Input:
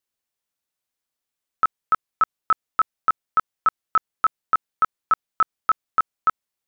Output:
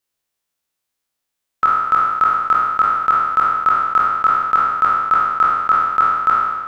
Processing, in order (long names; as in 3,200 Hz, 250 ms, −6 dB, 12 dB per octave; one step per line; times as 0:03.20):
peak hold with a decay on every bin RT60 1.41 s
level +3 dB